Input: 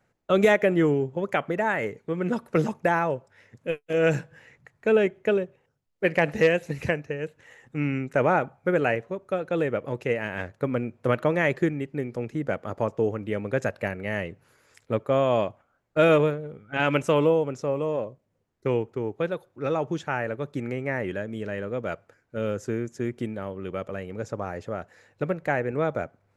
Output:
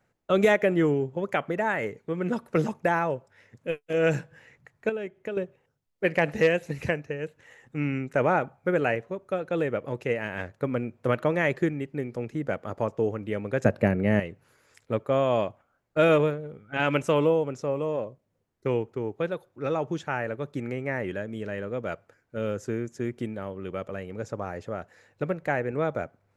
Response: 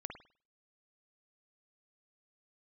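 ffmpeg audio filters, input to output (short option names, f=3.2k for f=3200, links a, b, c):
-filter_complex "[0:a]asettb=1/sr,asplit=3[a][b][c];[a]atrim=end=4.894[d];[b]atrim=start=4.89:end=5.37,asetpts=PTS-STARTPTS,afade=t=in:d=0.004:c=qsin,afade=t=out:st=0.476:d=0.004:c=qsin,acompressor=threshold=-34dB:ratio=2.5[e];[c]atrim=start=5.366[f];[d][e]acrossfade=d=0.004:c1=hsin:c2=qsin[g];[g][f]acrossfade=d=0.004:c1=qsin:c2=hsin,asettb=1/sr,asplit=3[h][i][j];[h]atrim=end=13.654[k];[i]atrim=start=13.65:end=14.2,asetpts=PTS-STARTPTS,afade=t=in:d=0.004:c=qsin,afade=t=out:st=0.546:d=0.004:c=qsin,equalizer=f=190:w=0.36:g=13[l];[j]atrim=start=14.196[m];[k][l]acrossfade=d=0.004:c1=hsin:c2=qsin[n];[n][m]acrossfade=d=0.004:c1=qsin:c2=hsin,volume=-1.5dB"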